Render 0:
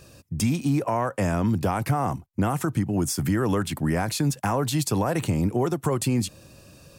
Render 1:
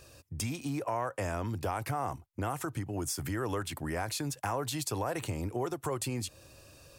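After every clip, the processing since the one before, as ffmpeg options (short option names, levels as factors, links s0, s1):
-filter_complex "[0:a]equalizer=f=190:t=o:w=0.94:g=-12.5,asplit=2[s0][s1];[s1]acompressor=threshold=0.0178:ratio=6,volume=0.794[s2];[s0][s2]amix=inputs=2:normalize=0,volume=0.376"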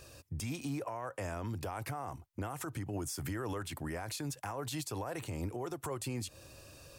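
-af "alimiter=level_in=2.24:limit=0.0631:level=0:latency=1:release=109,volume=0.447,volume=1.12"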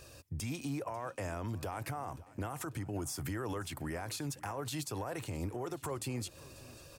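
-af "aecho=1:1:543|1086|1629|2172:0.1|0.056|0.0314|0.0176"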